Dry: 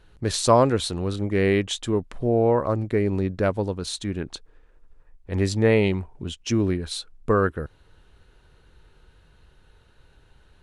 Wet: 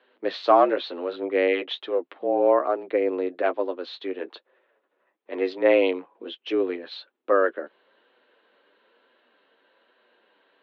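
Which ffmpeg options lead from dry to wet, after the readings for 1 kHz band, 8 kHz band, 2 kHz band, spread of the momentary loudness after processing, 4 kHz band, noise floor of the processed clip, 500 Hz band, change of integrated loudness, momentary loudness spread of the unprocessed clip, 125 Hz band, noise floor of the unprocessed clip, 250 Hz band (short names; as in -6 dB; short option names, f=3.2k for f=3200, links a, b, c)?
+2.0 dB, under -30 dB, +0.5 dB, 18 LU, -4.5 dB, -75 dBFS, +1.0 dB, -0.5 dB, 13 LU, under -30 dB, -57 dBFS, -5.5 dB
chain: -af "highpass=f=230:t=q:w=0.5412,highpass=f=230:t=q:w=1.307,lowpass=f=3.6k:t=q:w=0.5176,lowpass=f=3.6k:t=q:w=0.7071,lowpass=f=3.6k:t=q:w=1.932,afreqshift=82,flanger=delay=7.9:depth=2.6:regen=-29:speed=1.1:shape=sinusoidal,volume=3.5dB"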